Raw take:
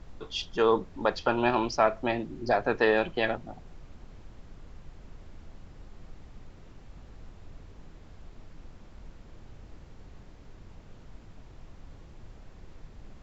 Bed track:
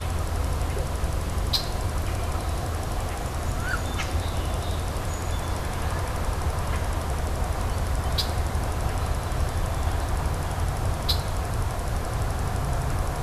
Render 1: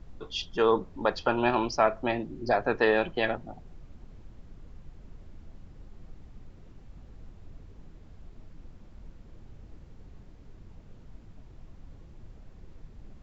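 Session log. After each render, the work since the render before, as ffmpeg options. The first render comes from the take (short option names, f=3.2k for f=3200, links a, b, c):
-af "afftdn=nr=6:nf=-51"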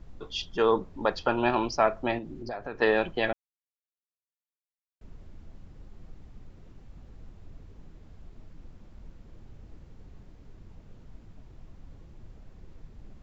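-filter_complex "[0:a]asettb=1/sr,asplit=3[a][b][c];[a]atrim=end=2.184[d];[b]atrim=start=2.18:end=2.82,asetpts=PTS-STARTPTS,afade=t=in:d=0.004:c=qsin,afade=t=out:st=0.636:d=0.004:c=qsin,acompressor=threshold=-35dB:ratio=3:attack=3.2:release=140:knee=1:detection=peak[e];[c]atrim=start=2.816[f];[d][e]acrossfade=d=0.004:c1=hsin:c2=qsin[g];[g][f]acrossfade=d=0.004:c1=qsin:c2=hsin,asplit=3[h][i][j];[h]atrim=end=3.33,asetpts=PTS-STARTPTS,afade=t=out:st=3.326:d=0.004:c=hsin[k];[i]atrim=start=3.33:end=5.01,asetpts=PTS-STARTPTS,volume=0[l];[j]atrim=start=5.01,asetpts=PTS-STARTPTS,afade=t=in:d=0.004:c=hsin[m];[k][l][m]concat=n=3:v=0:a=1"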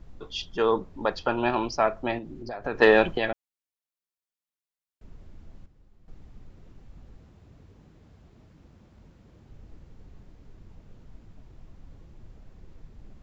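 -filter_complex "[0:a]asettb=1/sr,asplit=3[a][b][c];[a]atrim=end=2.644[d];[b]atrim=start=2.64:end=3.18,asetpts=PTS-STARTPTS,afade=t=in:d=0.004:c=qsin,afade=t=out:st=0.536:d=0.004:c=qsin,acontrast=74[e];[c]atrim=start=3.176[f];[d][e]acrossfade=d=0.004:c1=hsin:c2=qsin[g];[g][f]acrossfade=d=0.004:c1=qsin:c2=hsin,asettb=1/sr,asplit=3[h][i][j];[h]atrim=end=7.174[k];[i]atrim=start=7.17:end=9.51,asetpts=PTS-STARTPTS,afade=t=in:d=0.004:c=qsin,afade=t=out:st=2.336:d=0.004:c=qsin,highpass=66[l];[j]atrim=start=9.506[m];[k][l]acrossfade=d=0.004:c1=hsin:c2=qsin[n];[n][m]acrossfade=d=0.004:c1=qsin:c2=hsin,asplit=3[o][p][q];[o]atrim=end=5.662[r];[p]atrim=start=5.658:end=6.082,asetpts=PTS-STARTPTS,volume=-10.5dB[s];[q]atrim=start=6.078[t];[r][s]acrossfade=d=0.004:c1=hsin:c2=hsin[u];[u][t]acrossfade=d=0.004:c1=hsin:c2=hsin"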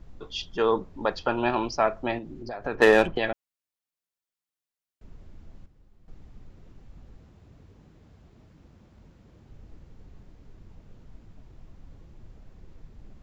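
-filter_complex "[0:a]asettb=1/sr,asplit=3[a][b][c];[a]atrim=end=2.754[d];[b]atrim=start=2.75:end=3.16,asetpts=PTS-STARTPTS,afade=t=in:d=0.004:c=qsin,afade=t=out:st=0.406:d=0.004:c=qsin,adynamicsmooth=sensitivity=3.5:basefreq=2.9k[e];[c]atrim=start=3.156[f];[d][e]acrossfade=d=0.004:c1=hsin:c2=qsin[g];[g][f]acrossfade=d=0.004:c1=qsin:c2=hsin"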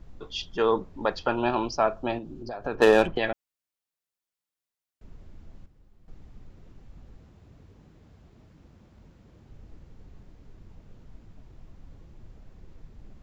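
-filter_complex "[0:a]asettb=1/sr,asplit=3[a][b][c];[a]atrim=end=1.354[d];[b]atrim=start=1.35:end=3.02,asetpts=PTS-STARTPTS,afade=t=in:d=0.004:c=qsin,afade=t=out:st=1.666:d=0.004:c=qsin,equalizer=f=2k:t=o:w=0.27:g=-13[e];[c]atrim=start=3.016[f];[d][e]acrossfade=d=0.004:c1=hsin:c2=qsin[g];[g][f]acrossfade=d=0.004:c1=qsin:c2=hsin"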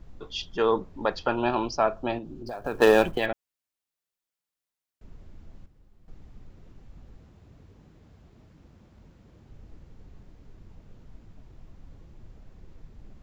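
-filter_complex "[0:a]asettb=1/sr,asplit=3[a][b][c];[a]atrim=end=2.464[d];[b]atrim=start=2.46:end=3.26,asetpts=PTS-STARTPTS,afade=t=in:d=0.004:c=qsin,afade=t=out:st=0.796:d=0.004:c=qsin,acrusher=bits=7:mode=log:mix=0:aa=0.000001[e];[c]atrim=start=3.256[f];[d][e]acrossfade=d=0.004:c1=hsin:c2=qsin[g];[g][f]acrossfade=d=0.004:c1=qsin:c2=hsin"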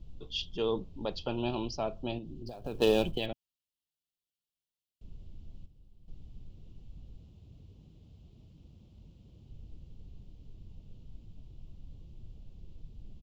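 -af "firequalizer=gain_entry='entry(130,0);entry(250,-5);entry(1700,-23);entry(2900,0);entry(6200,-7)':delay=0.05:min_phase=1"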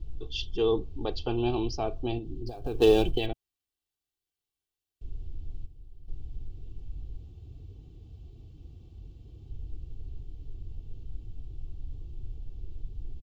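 -af "lowshelf=f=350:g=6.5,aecho=1:1:2.6:0.68"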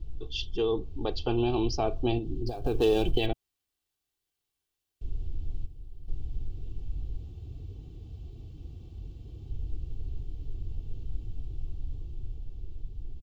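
-af "alimiter=limit=-19.5dB:level=0:latency=1:release=156,dynaudnorm=f=260:g=11:m=4.5dB"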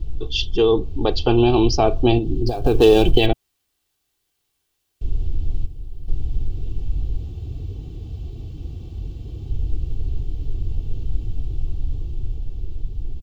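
-af "volume=11.5dB"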